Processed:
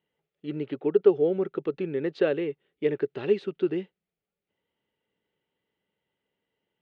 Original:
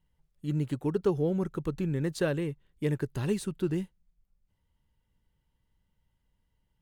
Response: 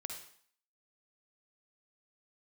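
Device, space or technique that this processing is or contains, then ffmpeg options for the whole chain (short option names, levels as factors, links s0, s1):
phone earpiece: -filter_complex "[0:a]highpass=350,equalizer=f=410:t=q:w=4:g=7,equalizer=f=1000:t=q:w=4:g=-10,equalizer=f=1600:t=q:w=4:g=-4,lowpass=f=3300:w=0.5412,lowpass=f=3300:w=1.3066,asettb=1/sr,asplit=3[s0][s1][s2];[s0]atrim=end=0.674[s3];[s1]atrim=start=0.67:end=1.09,asetpts=PTS-STARTPTS,afade=t=in:d=0.004:c=qsin,afade=t=out:st=0.416:d=0.004:c=qsin,lowpass=4400[s4];[s2]atrim=start=1.086[s5];[s3][s4]acrossfade=d=0.004:c1=hsin:c2=qsin[s6];[s6][s5]acrossfade=d=0.004:c1=qsin:c2=hsin,volume=1.78"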